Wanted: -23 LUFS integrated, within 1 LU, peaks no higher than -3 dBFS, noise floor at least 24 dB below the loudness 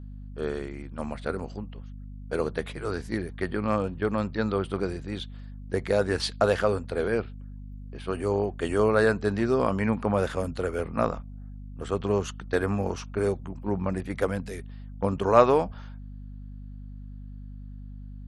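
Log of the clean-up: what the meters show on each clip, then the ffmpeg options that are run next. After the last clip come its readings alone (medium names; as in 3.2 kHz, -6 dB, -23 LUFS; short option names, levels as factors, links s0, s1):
hum 50 Hz; highest harmonic 250 Hz; hum level -38 dBFS; loudness -27.5 LUFS; peak level -4.0 dBFS; loudness target -23.0 LUFS
-> -af "bandreject=f=50:t=h:w=4,bandreject=f=100:t=h:w=4,bandreject=f=150:t=h:w=4,bandreject=f=200:t=h:w=4,bandreject=f=250:t=h:w=4"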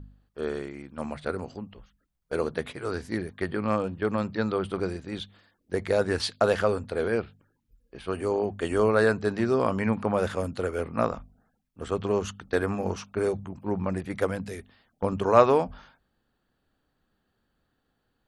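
hum not found; loudness -28.0 LUFS; peak level -3.5 dBFS; loudness target -23.0 LUFS
-> -af "volume=1.78,alimiter=limit=0.708:level=0:latency=1"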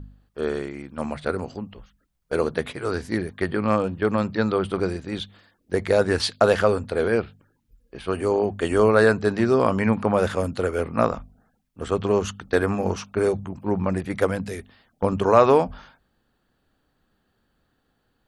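loudness -23.0 LUFS; peak level -3.0 dBFS; noise floor -71 dBFS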